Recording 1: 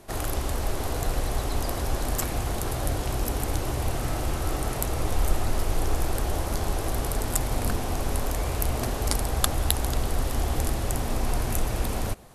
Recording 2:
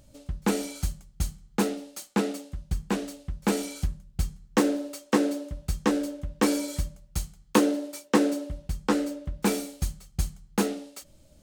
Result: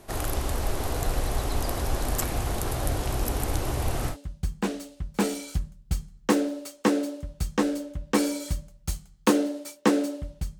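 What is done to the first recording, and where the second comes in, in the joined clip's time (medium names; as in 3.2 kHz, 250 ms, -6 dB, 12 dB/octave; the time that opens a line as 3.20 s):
recording 1
4.12 s: go over to recording 2 from 2.40 s, crossfade 0.10 s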